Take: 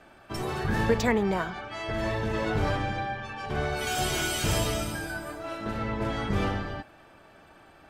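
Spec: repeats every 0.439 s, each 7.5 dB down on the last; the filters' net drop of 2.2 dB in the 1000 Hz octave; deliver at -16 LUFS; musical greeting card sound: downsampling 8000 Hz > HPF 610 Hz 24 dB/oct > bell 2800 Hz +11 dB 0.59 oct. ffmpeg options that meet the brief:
-af "equalizer=f=1k:t=o:g=-3,aecho=1:1:439|878|1317|1756|2195:0.422|0.177|0.0744|0.0312|0.0131,aresample=8000,aresample=44100,highpass=f=610:w=0.5412,highpass=f=610:w=1.3066,equalizer=f=2.8k:t=o:w=0.59:g=11,volume=13.5dB"

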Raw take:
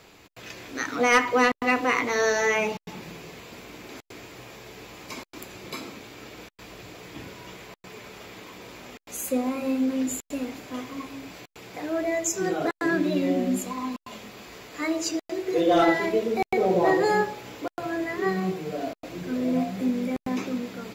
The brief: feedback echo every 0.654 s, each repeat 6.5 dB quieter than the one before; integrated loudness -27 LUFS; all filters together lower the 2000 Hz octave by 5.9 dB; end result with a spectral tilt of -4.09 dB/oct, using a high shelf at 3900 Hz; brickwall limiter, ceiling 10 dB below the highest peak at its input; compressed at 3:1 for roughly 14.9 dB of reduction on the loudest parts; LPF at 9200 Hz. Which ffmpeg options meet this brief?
-af "lowpass=9.2k,equalizer=f=2k:t=o:g=-7.5,highshelf=f=3.9k:g=3,acompressor=threshold=-38dB:ratio=3,alimiter=level_in=10dB:limit=-24dB:level=0:latency=1,volume=-10dB,aecho=1:1:654|1308|1962|2616|3270|3924:0.473|0.222|0.105|0.0491|0.0231|0.0109,volume=15dB"

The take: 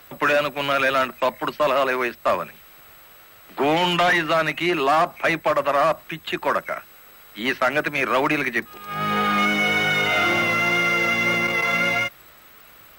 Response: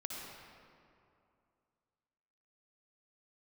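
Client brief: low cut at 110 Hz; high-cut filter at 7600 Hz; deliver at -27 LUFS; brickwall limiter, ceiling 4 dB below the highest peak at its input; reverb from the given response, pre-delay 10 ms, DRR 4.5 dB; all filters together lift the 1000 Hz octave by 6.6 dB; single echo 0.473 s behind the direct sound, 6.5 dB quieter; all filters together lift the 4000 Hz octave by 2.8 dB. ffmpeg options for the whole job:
-filter_complex "[0:a]highpass=110,lowpass=7.6k,equalizer=f=1k:t=o:g=8.5,equalizer=f=4k:t=o:g=3.5,alimiter=limit=-8dB:level=0:latency=1,aecho=1:1:473:0.473,asplit=2[a][b];[1:a]atrim=start_sample=2205,adelay=10[c];[b][c]afir=irnorm=-1:irlink=0,volume=-4.5dB[d];[a][d]amix=inputs=2:normalize=0,volume=-11.5dB"

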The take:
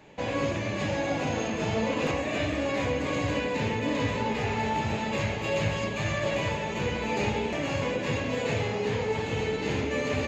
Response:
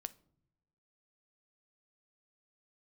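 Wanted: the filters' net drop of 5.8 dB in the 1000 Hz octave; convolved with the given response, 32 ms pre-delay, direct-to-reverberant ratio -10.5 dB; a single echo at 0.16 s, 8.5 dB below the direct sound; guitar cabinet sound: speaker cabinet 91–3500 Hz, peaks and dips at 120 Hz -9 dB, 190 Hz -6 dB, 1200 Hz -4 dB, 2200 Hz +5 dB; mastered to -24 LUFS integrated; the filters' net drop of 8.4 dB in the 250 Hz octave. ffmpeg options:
-filter_complex "[0:a]equalizer=f=250:t=o:g=-8,equalizer=f=1k:t=o:g=-5.5,aecho=1:1:160:0.376,asplit=2[a][b];[1:a]atrim=start_sample=2205,adelay=32[c];[b][c]afir=irnorm=-1:irlink=0,volume=14dB[d];[a][d]amix=inputs=2:normalize=0,highpass=91,equalizer=f=120:t=q:w=4:g=-9,equalizer=f=190:t=q:w=4:g=-6,equalizer=f=1.2k:t=q:w=4:g=-4,equalizer=f=2.2k:t=q:w=4:g=5,lowpass=f=3.5k:w=0.5412,lowpass=f=3.5k:w=1.3066,volume=-4dB"

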